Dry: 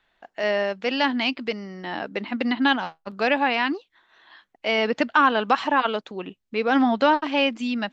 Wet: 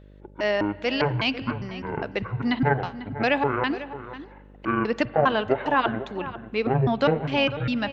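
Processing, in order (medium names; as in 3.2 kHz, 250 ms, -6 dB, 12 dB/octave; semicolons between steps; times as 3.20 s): pitch shift switched off and on -11.5 st, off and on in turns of 202 ms; in parallel at -1.5 dB: gain riding within 3 dB 0.5 s; on the sum: mains buzz 50 Hz, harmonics 12, -43 dBFS -5 dB/octave; echo from a far wall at 85 m, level -13 dB; spring tank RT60 1.7 s, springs 38/45/53 ms, chirp 20 ms, DRR 18 dB; trim -6 dB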